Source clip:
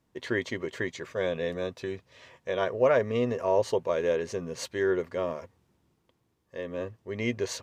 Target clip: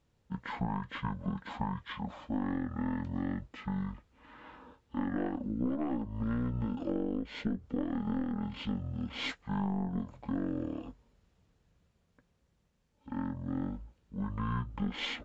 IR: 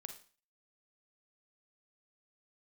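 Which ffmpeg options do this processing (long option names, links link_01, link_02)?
-af "asetrate=22050,aresample=44100,aeval=exprs='0.251*(cos(1*acos(clip(val(0)/0.251,-1,1)))-cos(1*PI/2))+0.0316*(cos(4*acos(clip(val(0)/0.251,-1,1)))-cos(4*PI/2))':channel_layout=same,acompressor=threshold=-29dB:ratio=12"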